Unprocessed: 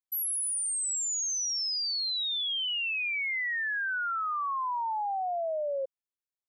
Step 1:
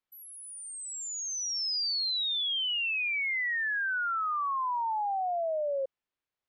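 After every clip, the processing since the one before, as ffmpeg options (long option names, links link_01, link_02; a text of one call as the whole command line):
ffmpeg -i in.wav -af "lowpass=3300,alimiter=level_in=12dB:limit=-24dB:level=0:latency=1:release=13,volume=-12dB,volume=8.5dB" out.wav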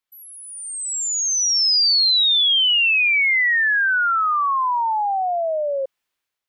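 ffmpeg -i in.wav -af "tiltshelf=frequency=900:gain=-4.5,dynaudnorm=framelen=470:gausssize=3:maxgain=8.5dB,volume=1.5dB" out.wav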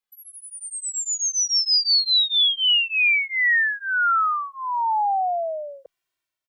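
ffmpeg -i in.wav -filter_complex "[0:a]asplit=2[link_01][link_02];[link_02]adelay=2,afreqshift=-0.39[link_03];[link_01][link_03]amix=inputs=2:normalize=1" out.wav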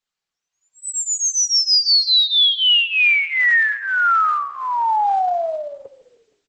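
ffmpeg -i in.wav -filter_complex "[0:a]asplit=5[link_01][link_02][link_03][link_04][link_05];[link_02]adelay=155,afreqshift=-37,volume=-16dB[link_06];[link_03]adelay=310,afreqshift=-74,volume=-22.6dB[link_07];[link_04]adelay=465,afreqshift=-111,volume=-29.1dB[link_08];[link_05]adelay=620,afreqshift=-148,volume=-35.7dB[link_09];[link_01][link_06][link_07][link_08][link_09]amix=inputs=5:normalize=0,volume=4dB" -ar 48000 -c:a libopus -b:a 10k out.opus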